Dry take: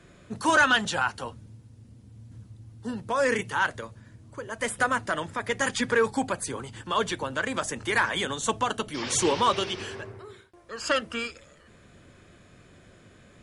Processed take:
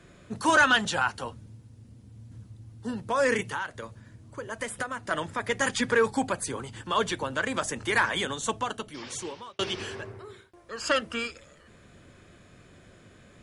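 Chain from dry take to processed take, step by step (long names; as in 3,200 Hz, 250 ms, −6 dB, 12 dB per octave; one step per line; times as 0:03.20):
0:03.43–0:05.11: downward compressor 12 to 1, threshold −29 dBFS, peak gain reduction 11 dB
0:08.10–0:09.59: fade out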